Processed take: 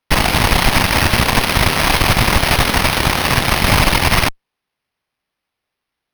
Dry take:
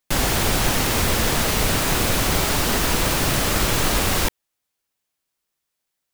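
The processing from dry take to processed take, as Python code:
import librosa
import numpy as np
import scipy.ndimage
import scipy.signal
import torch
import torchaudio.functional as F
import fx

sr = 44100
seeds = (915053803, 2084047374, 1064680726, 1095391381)

y = fx.fixed_phaser(x, sr, hz=2200.0, stages=8)
y = np.repeat(y[::6], 6)[:len(y)]
y = fx.cheby_harmonics(y, sr, harmonics=(6, 7), levels_db=(-7, -30), full_scale_db=-8.5)
y = F.gain(torch.from_numpy(y), 4.5).numpy()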